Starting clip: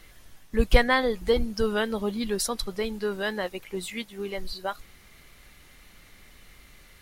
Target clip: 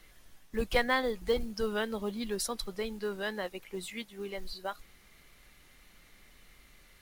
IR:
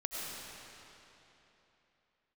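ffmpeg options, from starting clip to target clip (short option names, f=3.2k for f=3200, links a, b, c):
-filter_complex "[0:a]equalizer=f=88:t=o:w=0.88:g=-4.5,acrossover=split=330[a][b];[a]asoftclip=type=tanh:threshold=-23dB[c];[c][b]amix=inputs=2:normalize=0,acrusher=bits=7:mode=log:mix=0:aa=0.000001,volume=-6dB"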